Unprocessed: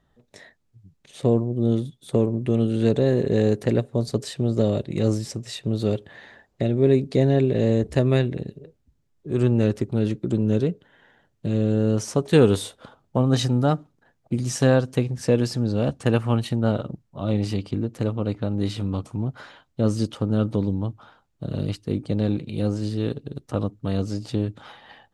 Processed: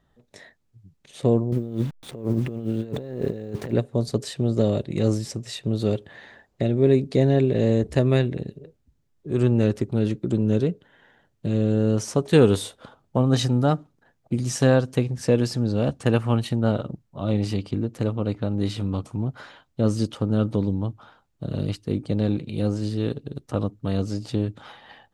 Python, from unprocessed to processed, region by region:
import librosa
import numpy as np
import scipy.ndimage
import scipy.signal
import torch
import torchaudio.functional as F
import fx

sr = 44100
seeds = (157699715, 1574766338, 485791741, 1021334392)

y = fx.chain(x, sr, fx.delta_hold(step_db=-43.0),
    fx.high_shelf(hz=4000.0, db=-7.5),
    fx.over_compress(threshold_db=-26.0, ratio=-0.5), at=(1.52, 3.73))